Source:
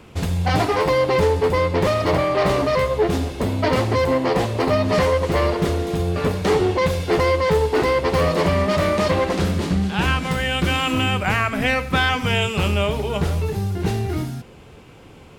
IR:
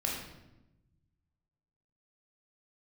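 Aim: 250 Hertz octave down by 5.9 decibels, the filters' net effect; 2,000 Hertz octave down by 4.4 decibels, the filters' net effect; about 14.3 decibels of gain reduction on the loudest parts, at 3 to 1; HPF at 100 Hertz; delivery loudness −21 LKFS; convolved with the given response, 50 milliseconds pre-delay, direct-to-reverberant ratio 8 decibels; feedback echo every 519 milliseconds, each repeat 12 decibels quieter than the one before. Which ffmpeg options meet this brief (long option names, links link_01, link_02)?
-filter_complex "[0:a]highpass=100,equalizer=frequency=250:width_type=o:gain=-8.5,equalizer=frequency=2000:width_type=o:gain=-5.5,acompressor=threshold=-37dB:ratio=3,aecho=1:1:519|1038|1557:0.251|0.0628|0.0157,asplit=2[link_01][link_02];[1:a]atrim=start_sample=2205,adelay=50[link_03];[link_02][link_03]afir=irnorm=-1:irlink=0,volume=-13dB[link_04];[link_01][link_04]amix=inputs=2:normalize=0,volume=13.5dB"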